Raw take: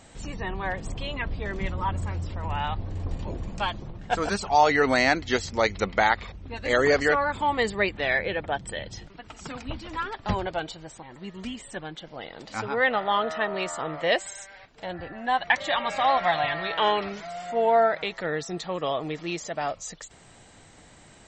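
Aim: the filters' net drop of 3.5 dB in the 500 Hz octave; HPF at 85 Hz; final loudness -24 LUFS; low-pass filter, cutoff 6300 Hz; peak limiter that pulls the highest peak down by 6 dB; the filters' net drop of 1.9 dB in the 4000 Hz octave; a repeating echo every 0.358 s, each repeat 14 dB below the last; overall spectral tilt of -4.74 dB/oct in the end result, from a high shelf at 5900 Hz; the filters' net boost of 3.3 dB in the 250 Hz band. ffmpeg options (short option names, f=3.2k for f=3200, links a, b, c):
-af "highpass=85,lowpass=6.3k,equalizer=f=250:t=o:g=6,equalizer=f=500:t=o:g=-6,equalizer=f=4k:t=o:g=-3.5,highshelf=f=5.9k:g=5,alimiter=limit=-13.5dB:level=0:latency=1,aecho=1:1:358|716:0.2|0.0399,volume=4.5dB"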